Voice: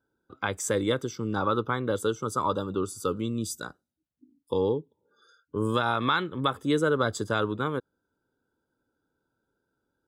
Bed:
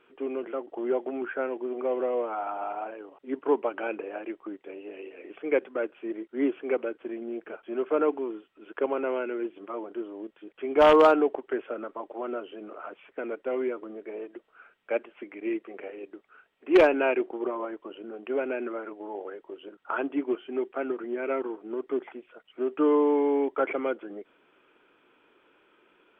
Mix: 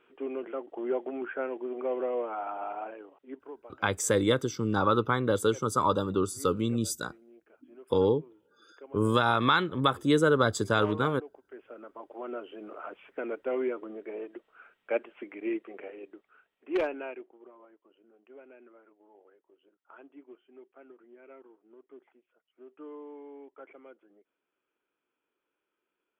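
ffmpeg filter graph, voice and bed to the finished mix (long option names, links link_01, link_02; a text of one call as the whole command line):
ffmpeg -i stem1.wav -i stem2.wav -filter_complex "[0:a]adelay=3400,volume=1.5dB[link_01];[1:a]volume=17.5dB,afade=type=out:start_time=2.93:duration=0.59:silence=0.11885,afade=type=in:start_time=11.46:duration=1.34:silence=0.0944061,afade=type=out:start_time=15.34:duration=2.01:silence=0.0841395[link_02];[link_01][link_02]amix=inputs=2:normalize=0" out.wav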